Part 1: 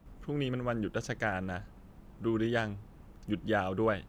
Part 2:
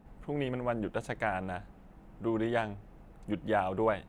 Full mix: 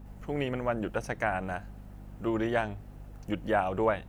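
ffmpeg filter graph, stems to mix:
ffmpeg -i stem1.wav -i stem2.wav -filter_complex "[0:a]highpass=630,highshelf=frequency=3500:gain=12,acompressor=threshold=-37dB:ratio=6,volume=-5.5dB[link_01];[1:a]aeval=exprs='val(0)+0.00447*(sin(2*PI*50*n/s)+sin(2*PI*2*50*n/s)/2+sin(2*PI*3*50*n/s)/3+sin(2*PI*4*50*n/s)/4+sin(2*PI*5*50*n/s)/5)':channel_layout=same,volume=1.5dB[link_02];[link_01][link_02]amix=inputs=2:normalize=0" out.wav

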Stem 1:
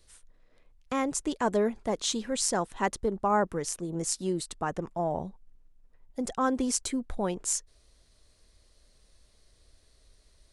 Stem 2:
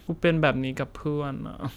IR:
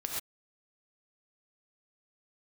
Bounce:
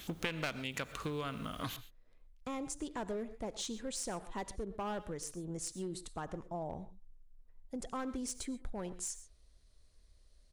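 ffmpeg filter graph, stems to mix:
-filter_complex "[0:a]asoftclip=type=hard:threshold=-22.5dB,lowshelf=frequency=93:gain=9.5,adelay=1550,volume=-10.5dB,asplit=2[link_01][link_02];[link_02]volume=-14dB[link_03];[1:a]aeval=exprs='clip(val(0),-1,0.0794)':channel_layout=same,tiltshelf=frequency=1300:gain=-8,volume=0.5dB,asplit=2[link_04][link_05];[link_05]volume=-16.5dB[link_06];[2:a]atrim=start_sample=2205[link_07];[link_03][link_06]amix=inputs=2:normalize=0[link_08];[link_08][link_07]afir=irnorm=-1:irlink=0[link_09];[link_01][link_04][link_09]amix=inputs=3:normalize=0,acompressor=threshold=-36dB:ratio=4"

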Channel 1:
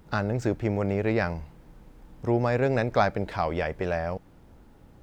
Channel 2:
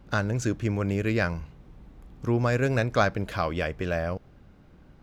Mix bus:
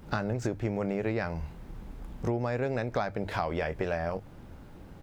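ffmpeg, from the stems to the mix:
ffmpeg -i stem1.wav -i stem2.wav -filter_complex "[0:a]bandreject=frequency=50:width_type=h:width=6,bandreject=frequency=100:width_type=h:width=6,volume=2.5dB,asplit=2[link_01][link_02];[1:a]acompressor=threshold=-30dB:ratio=6,volume=-1,adelay=22,volume=2.5dB[link_03];[link_02]apad=whole_len=222758[link_04];[link_03][link_04]sidechaincompress=threshold=-27dB:ratio=8:attack=16:release=536[link_05];[link_01][link_05]amix=inputs=2:normalize=0,acompressor=threshold=-27dB:ratio=5" out.wav

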